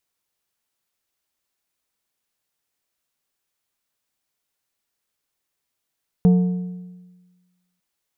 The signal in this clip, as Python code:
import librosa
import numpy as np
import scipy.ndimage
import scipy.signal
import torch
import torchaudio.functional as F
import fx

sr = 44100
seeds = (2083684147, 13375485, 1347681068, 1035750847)

y = fx.strike_metal(sr, length_s=1.55, level_db=-9.0, body='plate', hz=180.0, decay_s=1.36, tilt_db=12.0, modes=5)